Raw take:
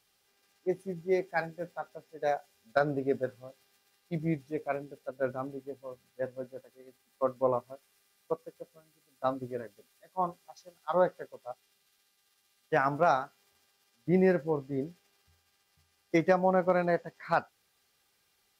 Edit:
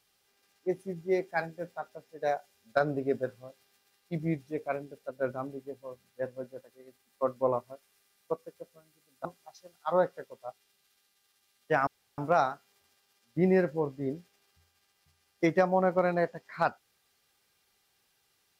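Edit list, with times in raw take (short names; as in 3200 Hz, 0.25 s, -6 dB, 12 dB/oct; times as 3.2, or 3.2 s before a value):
9.25–10.27 cut
12.89 insert room tone 0.31 s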